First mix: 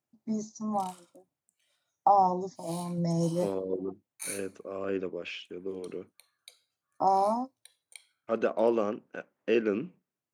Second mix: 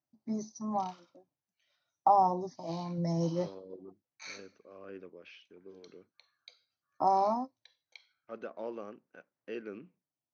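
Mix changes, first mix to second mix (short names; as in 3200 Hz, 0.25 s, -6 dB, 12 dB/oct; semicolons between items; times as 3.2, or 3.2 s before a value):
second voice -12.0 dB; master: add rippled Chebyshev low-pass 6200 Hz, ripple 3 dB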